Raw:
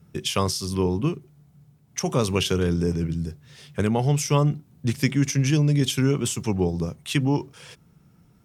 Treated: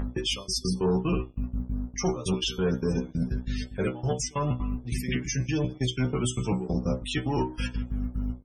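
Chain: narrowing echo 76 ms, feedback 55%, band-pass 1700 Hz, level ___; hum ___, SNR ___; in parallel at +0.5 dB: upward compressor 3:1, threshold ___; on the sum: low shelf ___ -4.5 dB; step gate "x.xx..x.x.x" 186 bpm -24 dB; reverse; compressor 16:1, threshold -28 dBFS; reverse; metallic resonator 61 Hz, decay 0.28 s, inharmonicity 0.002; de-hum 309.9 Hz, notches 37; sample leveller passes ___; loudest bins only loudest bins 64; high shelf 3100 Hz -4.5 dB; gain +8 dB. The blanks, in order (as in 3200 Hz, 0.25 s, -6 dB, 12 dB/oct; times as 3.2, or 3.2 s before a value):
-15.5 dB, 50 Hz, 12 dB, -35 dBFS, 460 Hz, 2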